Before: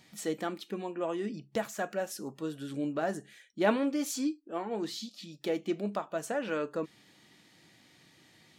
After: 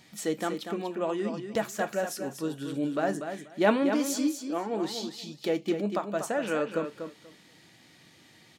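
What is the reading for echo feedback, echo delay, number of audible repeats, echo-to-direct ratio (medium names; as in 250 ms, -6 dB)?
17%, 241 ms, 2, -8.0 dB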